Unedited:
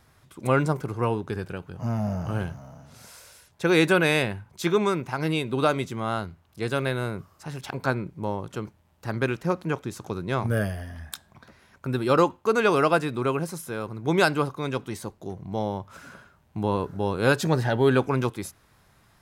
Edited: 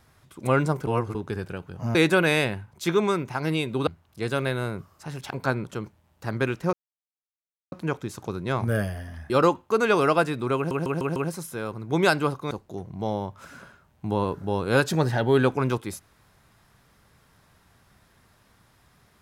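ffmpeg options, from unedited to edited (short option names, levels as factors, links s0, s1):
-filter_complex "[0:a]asplit=13[s0][s1][s2][s3][s4][s5][s6][s7][s8][s9][s10][s11][s12];[s0]atrim=end=0.872[s13];[s1]atrim=start=0.868:end=1.152,asetpts=PTS-STARTPTS,areverse[s14];[s2]atrim=start=1.148:end=1.952[s15];[s3]atrim=start=3.728:end=5.652[s16];[s4]atrim=start=6.268:end=8.042[s17];[s5]atrim=start=8.448:end=9.54,asetpts=PTS-STARTPTS,afade=t=out:st=1.088:d=0.004:c=hsin,apad=pad_dur=0.99[s18];[s6]atrim=start=9.54:end=11.122,asetpts=PTS-STARTPTS,afade=t=in:d=0.004:c=hsin[s19];[s7]atrim=start=12.048:end=13.462[s20];[s8]atrim=start=13.308:end=13.462[s21];[s9]atrim=start=13.308:end=13.462[s22];[s10]atrim=start=13.308:end=13.462[s23];[s11]atrim=start=13.308:end=14.662[s24];[s12]atrim=start=15.028[s25];[s13][s14]acrossfade=d=0.004:c1=hsin:c2=hsin[s26];[s26][s15]acrossfade=d=0.004:c1=hsin:c2=hsin[s27];[s27][s16]acrossfade=d=0.004:c1=hsin:c2=hsin[s28];[s28][s17]acrossfade=d=0.004:c1=hsin:c2=hsin[s29];[s18][s19]concat=n=2:v=0:a=1[s30];[s29][s30]acrossfade=d=0.004:c1=hsin:c2=hsin[s31];[s31][s20]acrossfade=d=0.004:c1=hsin:c2=hsin[s32];[s32][s21]acrossfade=d=0.004:c1=hsin:c2=hsin[s33];[s33][s22]acrossfade=d=0.004:c1=hsin:c2=hsin[s34];[s34][s23]acrossfade=d=0.004:c1=hsin:c2=hsin[s35];[s35][s24]acrossfade=d=0.004:c1=hsin:c2=hsin[s36];[s36][s25]acrossfade=d=0.004:c1=hsin:c2=hsin"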